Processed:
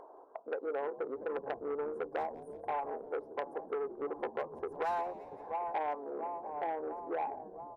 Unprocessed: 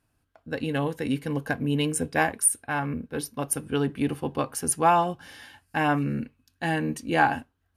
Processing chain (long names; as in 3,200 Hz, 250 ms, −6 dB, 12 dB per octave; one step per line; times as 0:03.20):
fade-out on the ending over 1.29 s
elliptic band-pass filter 390–1,000 Hz, stop band 50 dB
upward compression, threshold −40 dBFS
on a send: repeating echo 684 ms, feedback 60%, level −19.5 dB
on the sum: hard clipping −18 dBFS, distortion −18 dB
downward compressor 8 to 1, threshold −37 dBFS, peak gain reduction 16.5 dB
echo with shifted repeats 173 ms, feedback 63%, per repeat −68 Hz, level −17 dB
saturating transformer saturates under 1,300 Hz
level +5.5 dB